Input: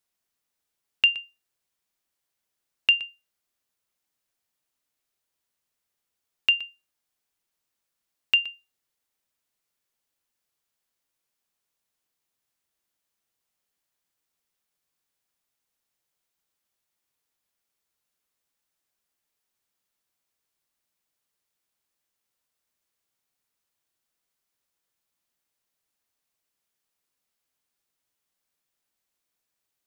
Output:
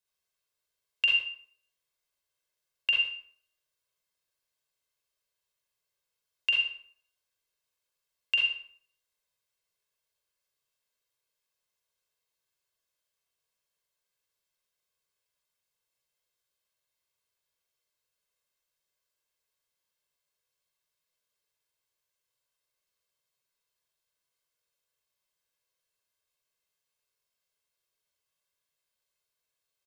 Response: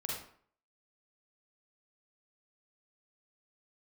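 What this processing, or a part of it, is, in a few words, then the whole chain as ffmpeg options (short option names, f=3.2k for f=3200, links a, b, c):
microphone above a desk: -filter_complex "[0:a]equalizer=f=4.1k:w=0.42:g=3,asettb=1/sr,asplit=3[a][b][c];[a]atrim=end=1.094[d];[b]atrim=start=1.09:end=2.97,asetpts=PTS-STARTPTS,afade=t=in:d=0.004:c=qsin,afade=t=out:st=1.876:d=0.004:c=qsin,acrossover=split=4100[e][f];[f]acompressor=threshold=-38dB:ratio=4:attack=1:release=60[g];[e][g]amix=inputs=2:normalize=0[h];[c]atrim=start=2.966[i];[d][h]acrossfade=d=0.004:c1=hsin:c2=qsin[j];[j][i]acrossfade=d=0.004:c1=qsin:c2=hsin,equalizer=f=79:w=1.1:g=-3.5,aecho=1:1:1.9:0.64[k];[1:a]atrim=start_sample=2205[l];[k][l]afir=irnorm=-1:irlink=0,aecho=1:1:84:0.2,volume=-7dB"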